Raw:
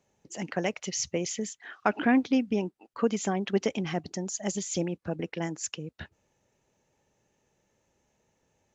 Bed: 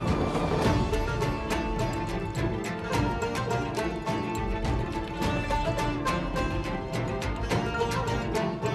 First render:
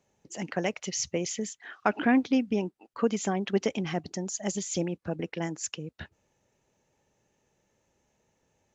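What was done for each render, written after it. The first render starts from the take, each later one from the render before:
no processing that can be heard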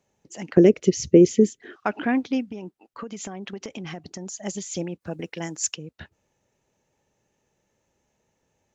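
0:00.57–0:01.76: low shelf with overshoot 570 Hz +13.5 dB, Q 3
0:02.46–0:04.41: downward compressor 12 to 1, threshold −30 dBFS
0:05.00–0:05.75: high-shelf EQ 5,500 Hz → 3,400 Hz +11 dB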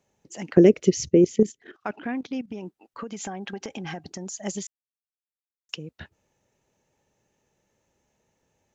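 0:01.05–0:02.50: output level in coarse steps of 14 dB
0:03.13–0:04.08: hollow resonant body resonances 810/1,600 Hz, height 11 dB
0:04.67–0:05.69: silence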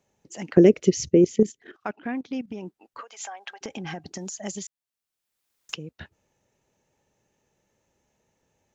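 0:01.87–0:02.27: expander for the loud parts, over −50 dBFS
0:03.01–0:03.61: high-pass filter 650 Hz 24 dB per octave
0:04.15–0:05.76: multiband upward and downward compressor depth 70%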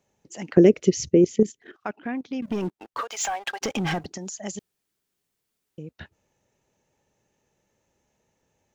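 0:02.42–0:04.06: leveller curve on the samples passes 3
0:04.59–0:05.78: fill with room tone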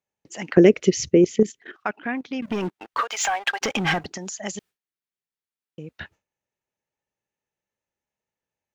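noise gate with hold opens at −47 dBFS
parametric band 1,900 Hz +8 dB 2.6 octaves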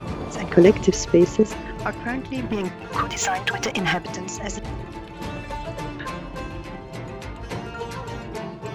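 mix in bed −4 dB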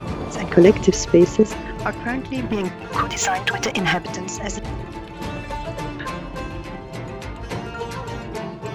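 level +2.5 dB
brickwall limiter −1 dBFS, peak gain reduction 1.5 dB

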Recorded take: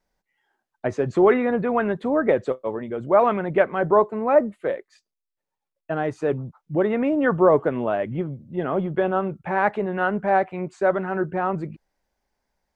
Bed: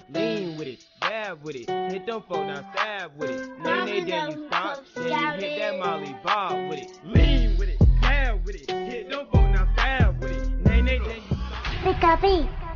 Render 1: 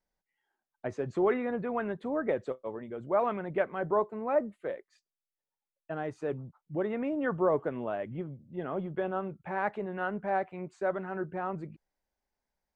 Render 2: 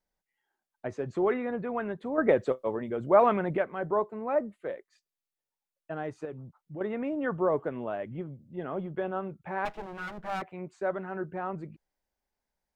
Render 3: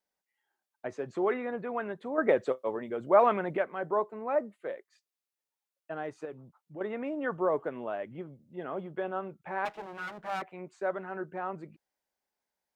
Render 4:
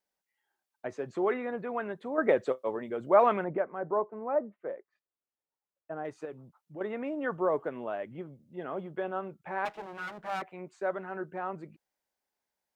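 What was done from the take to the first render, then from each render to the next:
level −10.5 dB
0:02.18–0:03.57: clip gain +7 dB; 0:06.25–0:06.81: downward compressor 2 to 1, threshold −41 dBFS; 0:09.65–0:10.42: lower of the sound and its delayed copy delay 6.2 ms
high-pass filter 330 Hz 6 dB per octave
0:03.44–0:06.05: low-pass filter 1,300 Hz

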